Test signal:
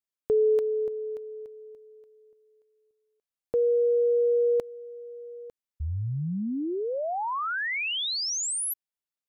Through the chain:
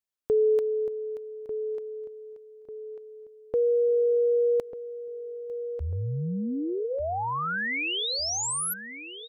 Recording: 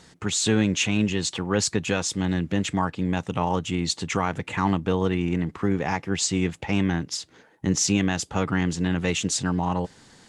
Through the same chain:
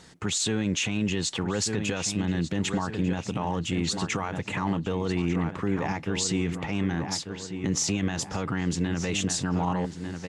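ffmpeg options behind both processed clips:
-filter_complex "[0:a]asplit=2[a][b];[b]adelay=1194,lowpass=f=3.5k:p=1,volume=-10.5dB,asplit=2[c][d];[d]adelay=1194,lowpass=f=3.5k:p=1,volume=0.41,asplit=2[e][f];[f]adelay=1194,lowpass=f=3.5k:p=1,volume=0.41,asplit=2[g][h];[h]adelay=1194,lowpass=f=3.5k:p=1,volume=0.41[i];[c][e][g][i]amix=inputs=4:normalize=0[j];[a][j]amix=inputs=2:normalize=0,alimiter=limit=-17.5dB:level=0:latency=1:release=36"

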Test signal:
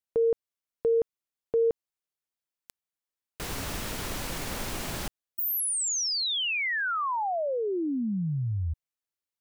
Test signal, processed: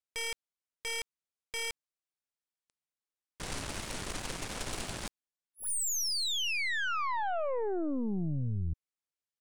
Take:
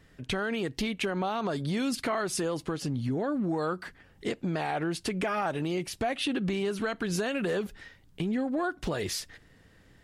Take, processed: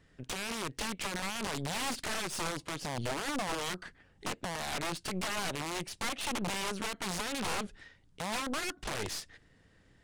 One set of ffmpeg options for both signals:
-af "aeval=exprs='(mod(18.8*val(0)+1,2)-1)/18.8':c=same,aresample=22050,aresample=44100,aeval=exprs='0.0794*(cos(1*acos(clip(val(0)/0.0794,-1,1)))-cos(1*PI/2))+0.0158*(cos(4*acos(clip(val(0)/0.0794,-1,1)))-cos(4*PI/2))+0.00112*(cos(7*acos(clip(val(0)/0.0794,-1,1)))-cos(7*PI/2))':c=same,volume=-4.5dB"

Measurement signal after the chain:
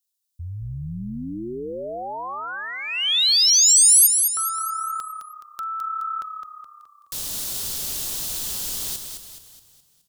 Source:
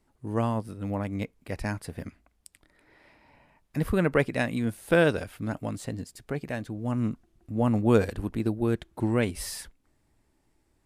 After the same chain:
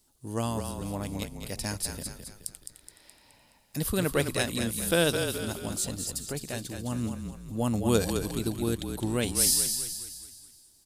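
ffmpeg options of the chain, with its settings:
-filter_complex "[0:a]asplit=7[a][b][c][d][e][f][g];[b]adelay=211,afreqshift=-34,volume=-6.5dB[h];[c]adelay=422,afreqshift=-68,volume=-13.1dB[i];[d]adelay=633,afreqshift=-102,volume=-19.6dB[j];[e]adelay=844,afreqshift=-136,volume=-26.2dB[k];[f]adelay=1055,afreqshift=-170,volume=-32.7dB[l];[g]adelay=1266,afreqshift=-204,volume=-39.3dB[m];[a][h][i][j][k][l][m]amix=inputs=7:normalize=0,aexciter=amount=4.5:drive=7.5:freq=3.1k,volume=-4dB"

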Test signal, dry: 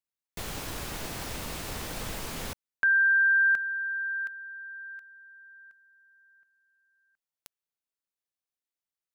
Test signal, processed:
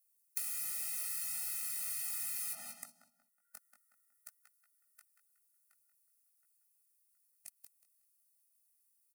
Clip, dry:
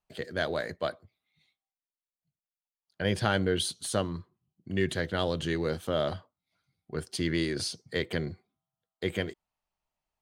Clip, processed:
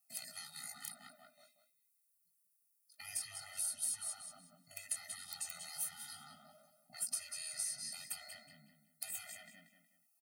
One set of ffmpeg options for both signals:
-filter_complex "[0:a]highpass=f=200:w=0.5412,highpass=f=200:w=1.3066,alimiter=limit=-23.5dB:level=0:latency=1:release=49,highshelf=f=8.9k:g=8,flanger=delay=16.5:depth=4.6:speed=0.45,asplit=2[a][b];[b]adelay=184,lowpass=f=4.5k:p=1,volume=-9dB,asplit=2[c][d];[d]adelay=184,lowpass=f=4.5k:p=1,volume=0.36,asplit=2[e][f];[f]adelay=184,lowpass=f=4.5k:p=1,volume=0.36,asplit=2[g][h];[h]adelay=184,lowpass=f=4.5k:p=1,volume=0.36[i];[c][e][g][i]amix=inputs=4:normalize=0[j];[a][j]amix=inputs=2:normalize=0,acrossover=split=880|1900|4000[k][l][m][n];[k]acompressor=threshold=-38dB:ratio=3[o];[l]acompressor=threshold=-48dB:ratio=2.5[p];[m]acompressor=threshold=-56dB:ratio=6[q];[n]acompressor=threshold=-55dB:ratio=2.5[r];[o][p][q][r]amix=inputs=4:normalize=0,afftfilt=real='re*lt(hypot(re,im),0.0112)':imag='im*lt(hypot(re,im),0.0112)':win_size=1024:overlap=0.75,acompressor=threshold=-52dB:ratio=6:attack=31:release=125:knee=1:detection=peak,aeval=exprs='(mod(70.8*val(0)+1,2)-1)/70.8':c=same,superequalizer=13b=0.398:16b=2,crystalizer=i=6:c=0,afftfilt=real='re*eq(mod(floor(b*sr/1024/300),2),0)':imag='im*eq(mod(floor(b*sr/1024/300),2),0)':win_size=1024:overlap=0.75,volume=-2dB"

